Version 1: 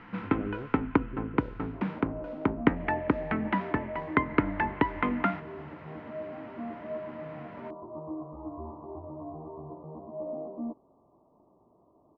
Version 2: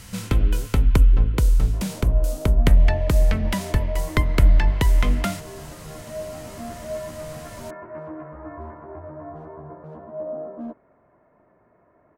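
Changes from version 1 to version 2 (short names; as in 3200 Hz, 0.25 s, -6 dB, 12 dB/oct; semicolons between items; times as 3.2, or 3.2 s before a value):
first sound: remove speaker cabinet 240–2200 Hz, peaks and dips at 290 Hz +9 dB, 580 Hz -7 dB, 900 Hz +5 dB, 1300 Hz +3 dB; second sound: remove rippled Chebyshev low-pass 1200 Hz, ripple 6 dB; master: remove air absorption 52 m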